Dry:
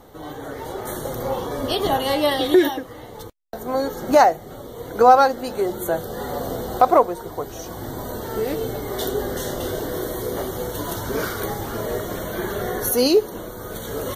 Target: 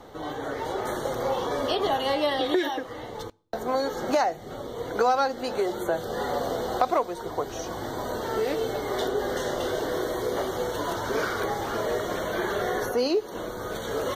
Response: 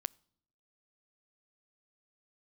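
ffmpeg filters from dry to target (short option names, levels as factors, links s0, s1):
-filter_complex "[0:a]acrossover=split=360|2100[s0][s1][s2];[s0]acompressor=threshold=0.0158:ratio=4[s3];[s1]acompressor=threshold=0.0501:ratio=4[s4];[s2]acompressor=threshold=0.0158:ratio=4[s5];[s3][s4][s5]amix=inputs=3:normalize=0,asplit=2[s6][s7];[s7]lowpass=7100[s8];[1:a]atrim=start_sample=2205,lowshelf=f=200:g=-9.5[s9];[s8][s9]afir=irnorm=-1:irlink=0,volume=2.82[s10];[s6][s10]amix=inputs=2:normalize=0,volume=0.398"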